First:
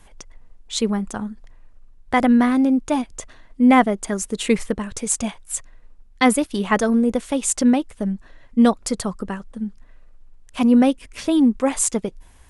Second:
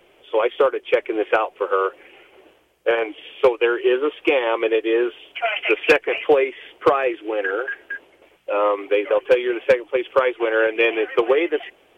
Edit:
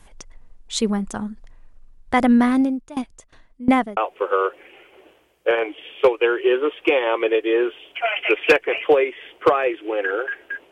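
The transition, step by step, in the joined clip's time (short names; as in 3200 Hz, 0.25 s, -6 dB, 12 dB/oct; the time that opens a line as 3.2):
first
2.61–3.97 dB-ramp tremolo decaying 2.8 Hz, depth 20 dB
3.97 switch to second from 1.37 s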